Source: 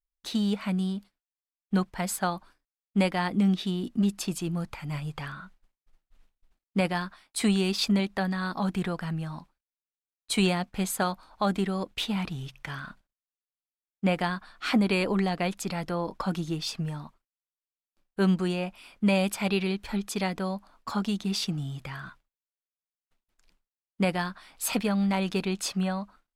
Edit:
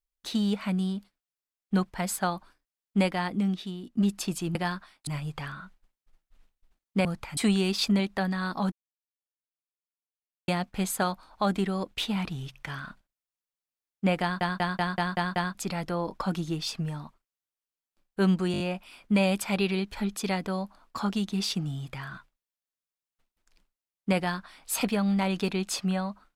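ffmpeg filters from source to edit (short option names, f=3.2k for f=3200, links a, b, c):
-filter_complex "[0:a]asplit=19[a][b][c][d][e][f][g][h][i][j][k][l][m][n][o][p][q][r][s];[a]atrim=end=3.97,asetpts=PTS-STARTPTS,afade=t=out:st=2.98:d=0.99:silence=0.251189[t];[b]atrim=start=3.97:end=4.552,asetpts=PTS-STARTPTS,afade=t=in:d=0.004:c=hsin:silence=0.251189[u];[c]atrim=start=6.848:end=7.372[v];[d]atrim=start=4.868:end=6.852[w];[e]atrim=start=4.548:end=4.872[x];[f]atrim=start=7.368:end=8.72,asetpts=PTS-STARTPTS,afade=t=out:st=1.348:d=0.004:c=hsin[y];[g]atrim=start=8.72:end=10.48,asetpts=PTS-STARTPTS,volume=0[z];[h]atrim=start=10.48:end=14.412,asetpts=PTS-STARTPTS,afade=t=in:d=0.004:c=hsin[aa];[i]atrim=start=14.218:end=14.412[ab];[j]atrim=start=14.218:end=14.412[ac];[k]atrim=start=14.218:end=14.412[ad];[l]atrim=start=14.218:end=14.412[ae];[m]atrim=start=14.218:end=14.412[af];[n]atrim=start=14.218:end=14.412[ag];[o]atrim=start=15.548:end=18.542[ah];[p]atrim=start=18.518:end=18.542[ai];[q]atrim=start=18.518:end=18.542[aj];[r]atrim=start=18.518:end=18.542[ak];[s]atrim=start=18.518[al];[t][u]concat=n=2:v=0:a=1[am];[am][v]acrossfade=d=0.004:c1=hsin:c2=hsin[an];[an][w]acrossfade=d=0.004:c1=hsin:c2=hsin[ao];[ao][x]acrossfade=d=0.004:c1=hsin:c2=hsin[ap];[y][z][aa]concat=n=3:v=0:a=1[aq];[ap][aq]acrossfade=d=0.004:c1=hsin:c2=hsin[ar];[ar][ab]acrossfade=d=0.004:c1=hsin:c2=hsin[as];[as][ac]acrossfade=d=0.004:c1=hsin:c2=hsin[at];[at][ad]acrossfade=d=0.004:c1=hsin:c2=hsin[au];[au][ae]acrossfade=d=0.004:c1=hsin:c2=hsin[av];[av][af]acrossfade=d=0.004:c1=hsin:c2=hsin[aw];[aw][ag]acrossfade=d=0.004:c1=hsin:c2=hsin[ax];[ax][ah]acrossfade=d=0.004:c1=hsin:c2=hsin[ay];[ay][ai]acrossfade=d=0.004:c1=hsin:c2=hsin[az];[az][aj]acrossfade=d=0.004:c1=hsin:c2=hsin[ba];[ba][ak]acrossfade=d=0.004:c1=hsin:c2=hsin[bb];[bb][al]acrossfade=d=0.004:c1=hsin:c2=hsin"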